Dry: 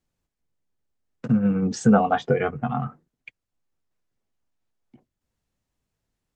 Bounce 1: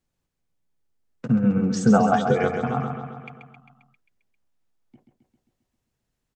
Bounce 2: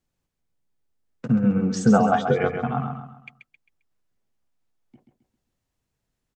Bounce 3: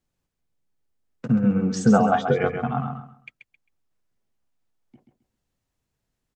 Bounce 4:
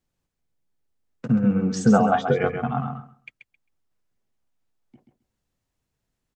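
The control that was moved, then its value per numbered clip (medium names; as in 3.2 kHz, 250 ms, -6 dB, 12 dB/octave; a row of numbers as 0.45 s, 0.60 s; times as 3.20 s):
feedback delay, feedback: 62%, 37%, 24%, 16%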